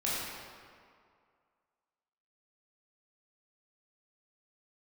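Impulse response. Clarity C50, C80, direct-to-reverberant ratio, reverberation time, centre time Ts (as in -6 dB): -3.0 dB, -1.0 dB, -8.5 dB, 2.2 s, 133 ms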